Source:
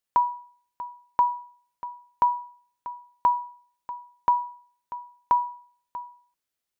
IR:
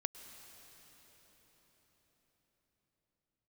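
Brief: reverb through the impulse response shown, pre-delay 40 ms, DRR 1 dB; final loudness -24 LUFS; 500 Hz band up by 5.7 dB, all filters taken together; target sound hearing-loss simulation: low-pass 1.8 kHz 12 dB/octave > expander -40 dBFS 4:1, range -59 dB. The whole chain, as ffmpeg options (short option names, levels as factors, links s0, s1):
-filter_complex "[0:a]equalizer=f=500:t=o:g=7.5,asplit=2[s0][s1];[1:a]atrim=start_sample=2205,adelay=40[s2];[s1][s2]afir=irnorm=-1:irlink=0,volume=1[s3];[s0][s3]amix=inputs=2:normalize=0,lowpass=1800,agate=range=0.00112:threshold=0.01:ratio=4,volume=0.891"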